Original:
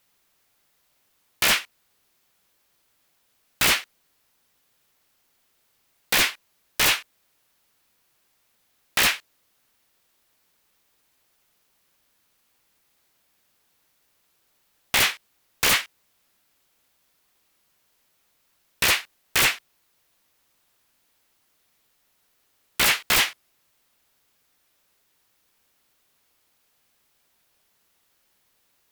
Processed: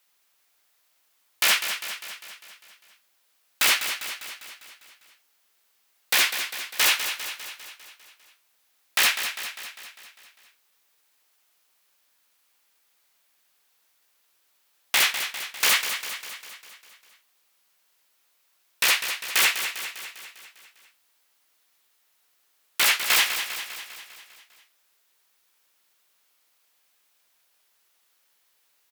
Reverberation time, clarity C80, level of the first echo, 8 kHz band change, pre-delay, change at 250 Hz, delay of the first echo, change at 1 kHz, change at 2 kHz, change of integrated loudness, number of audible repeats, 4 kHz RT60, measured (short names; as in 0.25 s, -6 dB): none, none, -9.0 dB, +0.5 dB, none, -9.5 dB, 0.2 s, -1.5 dB, 0.0 dB, -2.0 dB, 6, none